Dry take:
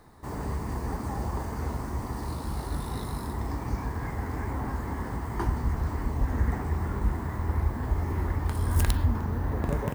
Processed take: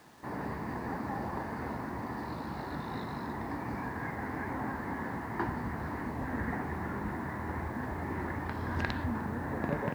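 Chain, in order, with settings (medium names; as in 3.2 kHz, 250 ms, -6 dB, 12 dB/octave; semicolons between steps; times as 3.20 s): cabinet simulation 170–4000 Hz, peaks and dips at 420 Hz -4 dB, 1.2 kHz -3 dB, 1.7 kHz +5 dB, 3.2 kHz -7 dB; word length cut 10-bit, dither none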